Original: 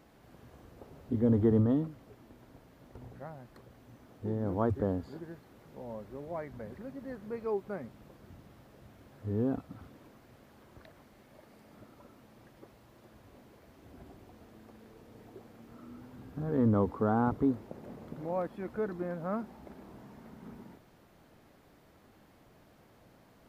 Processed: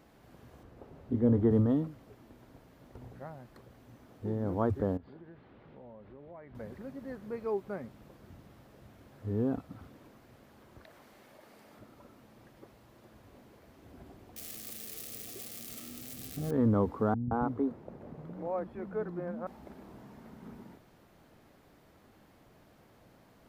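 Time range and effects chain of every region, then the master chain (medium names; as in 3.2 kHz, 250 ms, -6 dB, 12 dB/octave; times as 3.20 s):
0.63–1.51 s: treble shelf 3.8 kHz -9 dB + doubling 25 ms -13 dB
4.97–6.55 s: low-pass 3.5 kHz 24 dB/octave + compression 3:1, threshold -49 dBFS
10.84–11.79 s: bass shelf 230 Hz -11 dB + level flattener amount 50%
14.36–16.51 s: zero-crossing glitches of -31 dBFS + Butterworth band-stop 940 Hz, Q 3.1 + peaking EQ 1.5 kHz -7.5 dB 0.36 oct
17.14–19.47 s: treble shelf 2.8 kHz -11.5 dB + bands offset in time lows, highs 170 ms, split 230 Hz
whole clip: none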